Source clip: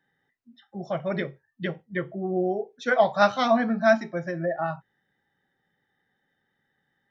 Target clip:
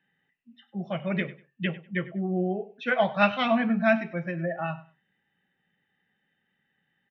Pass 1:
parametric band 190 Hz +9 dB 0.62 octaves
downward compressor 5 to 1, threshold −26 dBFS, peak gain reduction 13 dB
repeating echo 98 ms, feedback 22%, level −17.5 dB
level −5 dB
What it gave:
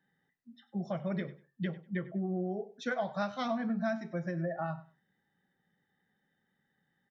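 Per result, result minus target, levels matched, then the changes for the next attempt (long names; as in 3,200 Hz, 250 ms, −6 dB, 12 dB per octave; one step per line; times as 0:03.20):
downward compressor: peak gain reduction +13 dB; 2,000 Hz band −4.0 dB
remove: downward compressor 5 to 1, threshold −26 dBFS, peak gain reduction 13 dB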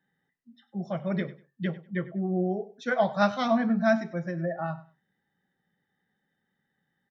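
2,000 Hz band −3.5 dB
add first: low-pass with resonance 2,700 Hz, resonance Q 10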